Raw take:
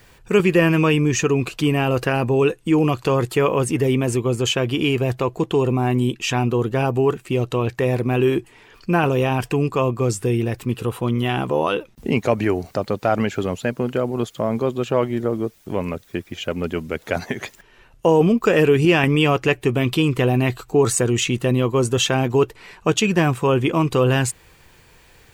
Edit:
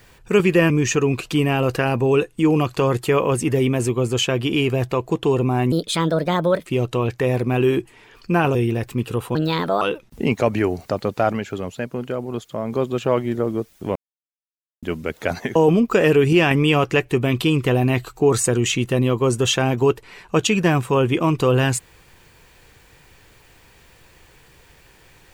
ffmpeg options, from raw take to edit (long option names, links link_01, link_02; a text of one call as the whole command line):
ffmpeg -i in.wav -filter_complex "[0:a]asplit=12[link_01][link_02][link_03][link_04][link_05][link_06][link_07][link_08][link_09][link_10][link_11][link_12];[link_01]atrim=end=0.702[link_13];[link_02]atrim=start=0.978:end=6.004[link_14];[link_03]atrim=start=6:end=7.25,asetpts=PTS-STARTPTS,asetrate=58653,aresample=44100,atrim=end_sample=41447,asetpts=PTS-STARTPTS[link_15];[link_04]atrim=start=7.246:end=9.142[link_16];[link_05]atrim=start=10.258:end=11.064[link_17];[link_06]atrim=start=11.06:end=11.67,asetpts=PTS-STARTPTS,asetrate=57771,aresample=44100,atrim=end_sample=20535,asetpts=PTS-STARTPTS[link_18];[link_07]atrim=start=11.666:end=13.182[link_19];[link_08]atrim=start=13.178:end=14.582,asetpts=PTS-STARTPTS,volume=-4.5dB[link_20];[link_09]atrim=start=14.578:end=15.81,asetpts=PTS-STARTPTS,afade=type=out:start_time=1.228:duration=0.004:curve=hsin[link_21];[link_10]atrim=start=15.81:end=16.68,asetpts=PTS-STARTPTS,volume=0[link_22];[link_11]atrim=start=16.68:end=17.412,asetpts=PTS-STARTPTS,afade=type=in:duration=0.004:curve=hsin[link_23];[link_12]atrim=start=18.078[link_24];[link_13][link_14]acrossfade=duration=0.004:curve1=hsin:curve2=hsin[link_25];[link_25][link_15]acrossfade=duration=0.004:curve1=hsin:curve2=hsin[link_26];[link_26][link_16]acrossfade=duration=0.004:curve1=hsin:curve2=hsin[link_27];[link_27][link_17]acrossfade=duration=0.004:curve1=hsin:curve2=hsin[link_28];[link_28][link_18]acrossfade=duration=0.004:curve1=hsin:curve2=hsin[link_29];[link_29][link_19]acrossfade=duration=0.004:curve1=hsin:curve2=hsin[link_30];[link_30][link_20]acrossfade=duration=0.004:curve1=hsin:curve2=hsin[link_31];[link_21][link_22][link_23]concat=n=3:v=0:a=1[link_32];[link_31][link_32]acrossfade=duration=0.004:curve1=hsin:curve2=hsin[link_33];[link_33][link_24]acrossfade=duration=0.004:curve1=hsin:curve2=hsin" out.wav